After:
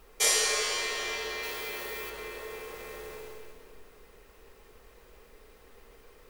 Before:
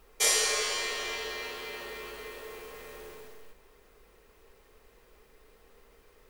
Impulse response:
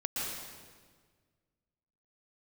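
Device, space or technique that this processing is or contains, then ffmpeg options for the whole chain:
ducked reverb: -filter_complex "[0:a]asplit=3[link_01][link_02][link_03];[1:a]atrim=start_sample=2205[link_04];[link_02][link_04]afir=irnorm=-1:irlink=0[link_05];[link_03]apad=whole_len=277692[link_06];[link_05][link_06]sidechaincompress=threshold=-46dB:ratio=8:attack=16:release=117,volume=-6.5dB[link_07];[link_01][link_07]amix=inputs=2:normalize=0,asettb=1/sr,asplit=3[link_08][link_09][link_10];[link_08]atrim=end=1.434[link_11];[link_09]atrim=start=1.43:end=2.1,asetpts=PTS-STARTPTS,afade=type=in:duration=0.004:curve=qsin,afade=type=out:start_time=0.666:duration=0.004:curve=qsin,highshelf=frequency=9100:gain=12[link_12];[link_10]atrim=start=2.096[link_13];[link_11][link_12]acrossfade=duration=0.004:curve1=hsin:curve2=qsin[link_14];[link_14][link_13]acrossfade=duration=0.004:curve1=qsin:curve2=hsin"

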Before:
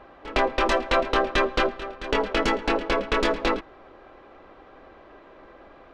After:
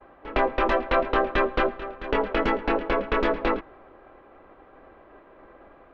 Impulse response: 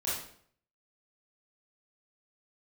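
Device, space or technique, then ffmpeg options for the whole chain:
hearing-loss simulation: -af "lowpass=2300,agate=range=-33dB:threshold=-46dB:ratio=3:detection=peak"

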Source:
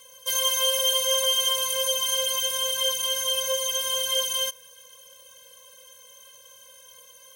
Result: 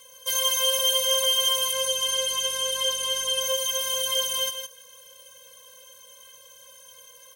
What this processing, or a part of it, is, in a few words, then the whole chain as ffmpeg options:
ducked delay: -filter_complex "[0:a]asettb=1/sr,asplit=3[link_01][link_02][link_03];[link_01]atrim=end=1.724[link_04];[link_02]atrim=start=1.72:end=3.41,asetpts=PTS-STARTPTS,afade=type=in:duration=0.004:curve=qsin,afade=type=out:start_time=1.686:duration=0.004:curve=qsin,lowpass=11000[link_05];[link_03]atrim=start=3.406[link_06];[link_04][link_05]acrossfade=duration=0.004:curve1=hsin:curve2=qsin[link_07];[link_07][link_06]acrossfade=duration=0.004:curve1=qsin:curve2=hsin,asplit=3[link_08][link_09][link_10];[link_09]adelay=160,volume=-6.5dB[link_11];[link_10]apad=whole_len=331620[link_12];[link_11][link_12]sidechaincompress=threshold=-27dB:ratio=8:attack=16:release=408[link_13];[link_08][link_13]amix=inputs=2:normalize=0"

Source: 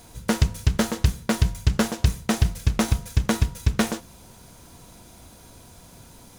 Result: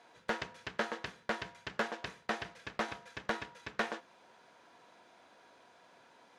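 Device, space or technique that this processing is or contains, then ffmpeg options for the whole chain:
megaphone: -af "highpass=510,lowpass=2800,equalizer=frequency=1700:width_type=o:width=0.25:gain=5,asoftclip=type=hard:threshold=-16dB,volume=-6dB"

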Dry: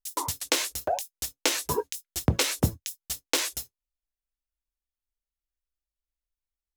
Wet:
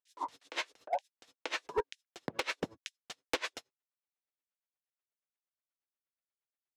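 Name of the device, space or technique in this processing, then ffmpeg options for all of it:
helicopter radio: -af "highpass=380,lowpass=2700,aeval=exprs='val(0)*pow(10,-26*(0.5-0.5*cos(2*PI*8.4*n/s))/20)':channel_layout=same,asoftclip=type=hard:threshold=-28dB,volume=3.5dB"

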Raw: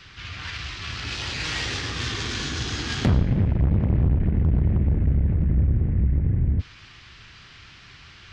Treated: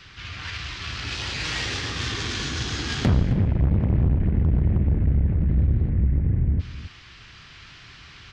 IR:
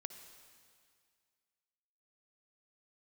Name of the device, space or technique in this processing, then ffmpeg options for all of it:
ducked delay: -filter_complex "[0:a]asettb=1/sr,asplit=3[link_01][link_02][link_03];[link_01]atrim=end=5.484[link_04];[link_02]atrim=start=5.48:end=5.89,asetpts=PTS-STARTPTS,afade=type=in:duration=0.004:curve=qsin,afade=type=out:start_time=0.406:duration=0.004:curve=qsin,equalizer=frequency=4100:width_type=o:width=0.6:gain=10.5[link_05];[link_03]atrim=start=5.886[link_06];[link_04][link_05]acrossfade=duration=0.004:curve1=hsin:curve2=qsin[link_07];[link_07][link_06]acrossfade=duration=0.004:curve1=qsin:curve2=hsin,asplit=3[link_08][link_09][link_10];[link_09]adelay=265,volume=-4dB[link_11];[link_10]apad=whole_len=379034[link_12];[link_11][link_12]sidechaincompress=threshold=-34dB:ratio=3:attack=16:release=912[link_13];[link_08][link_13]amix=inputs=2:normalize=0"

